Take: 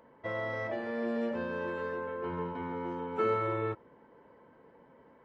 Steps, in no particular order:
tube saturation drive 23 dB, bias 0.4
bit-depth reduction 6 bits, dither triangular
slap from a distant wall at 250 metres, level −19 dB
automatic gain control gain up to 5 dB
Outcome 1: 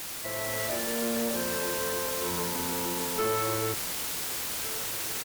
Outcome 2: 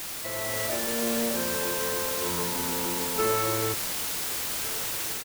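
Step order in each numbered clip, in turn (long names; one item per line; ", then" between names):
bit-depth reduction, then slap from a distant wall, then automatic gain control, then tube saturation
tube saturation, then bit-depth reduction, then automatic gain control, then slap from a distant wall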